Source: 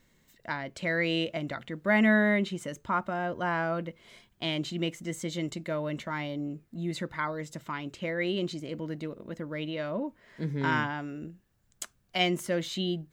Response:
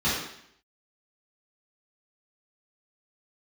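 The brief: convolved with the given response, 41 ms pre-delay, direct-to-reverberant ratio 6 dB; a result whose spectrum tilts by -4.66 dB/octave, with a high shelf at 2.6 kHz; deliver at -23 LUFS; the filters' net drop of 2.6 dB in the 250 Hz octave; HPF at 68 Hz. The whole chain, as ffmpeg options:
-filter_complex "[0:a]highpass=68,equalizer=f=250:t=o:g=-3.5,highshelf=f=2600:g=-7.5,asplit=2[s0][s1];[1:a]atrim=start_sample=2205,adelay=41[s2];[s1][s2]afir=irnorm=-1:irlink=0,volume=0.106[s3];[s0][s3]amix=inputs=2:normalize=0,volume=2.82"

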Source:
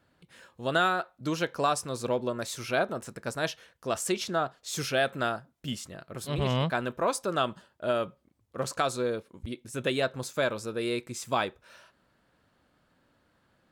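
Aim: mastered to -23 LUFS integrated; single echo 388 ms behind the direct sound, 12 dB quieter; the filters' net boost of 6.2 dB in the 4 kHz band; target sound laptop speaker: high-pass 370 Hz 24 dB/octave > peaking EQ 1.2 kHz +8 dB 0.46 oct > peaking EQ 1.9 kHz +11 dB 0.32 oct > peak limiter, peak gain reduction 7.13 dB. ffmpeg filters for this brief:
-af "highpass=f=370:w=0.5412,highpass=f=370:w=1.3066,equalizer=f=1200:t=o:w=0.46:g=8,equalizer=f=1900:t=o:w=0.32:g=11,equalizer=f=4000:t=o:g=7,aecho=1:1:388:0.251,volume=2,alimiter=limit=0.376:level=0:latency=1"

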